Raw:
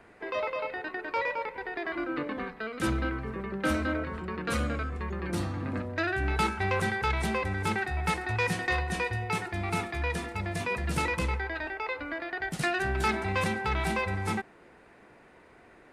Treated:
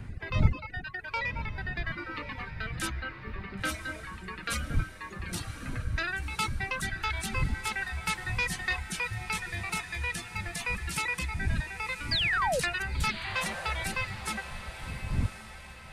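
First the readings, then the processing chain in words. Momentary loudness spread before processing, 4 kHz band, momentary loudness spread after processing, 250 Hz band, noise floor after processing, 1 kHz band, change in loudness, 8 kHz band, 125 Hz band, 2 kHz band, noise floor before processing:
7 LU, +4.5 dB, 10 LU, −7.0 dB, −46 dBFS, −4.0 dB, −1.5 dB, +4.5 dB, −0.5 dB, 0.0 dB, −56 dBFS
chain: wind on the microphone 130 Hz −29 dBFS
reverb reduction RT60 0.95 s
guitar amp tone stack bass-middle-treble 5-5-5
in parallel at −0.5 dB: downward compressor, threshold −47 dBFS, peak gain reduction 21.5 dB
on the sum: reverb reduction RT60 1.8 s
sound drawn into the spectrogram fall, 0:12.11–0:12.60, 460–5,000 Hz −36 dBFS
on a send: feedback delay with all-pass diffusion 1,052 ms, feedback 47%, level −11 dB
on the sum: level +8 dB

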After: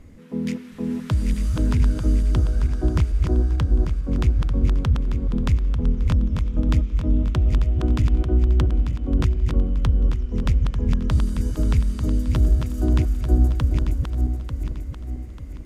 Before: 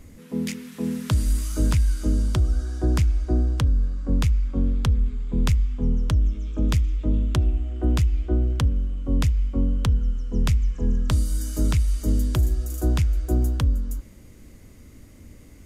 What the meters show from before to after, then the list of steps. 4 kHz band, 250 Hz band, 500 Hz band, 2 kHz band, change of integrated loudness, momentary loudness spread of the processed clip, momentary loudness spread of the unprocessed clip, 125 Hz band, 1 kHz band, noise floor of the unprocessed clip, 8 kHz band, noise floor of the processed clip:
−2.5 dB, +2.0 dB, +2.0 dB, 0.0 dB, +2.0 dB, 8 LU, 5 LU, +2.0 dB, +1.5 dB, −47 dBFS, −7.0 dB, −35 dBFS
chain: feedback delay that plays each chunk backwards 446 ms, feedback 62%, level −4.5 dB
low-pass filter 2,600 Hz 6 dB per octave

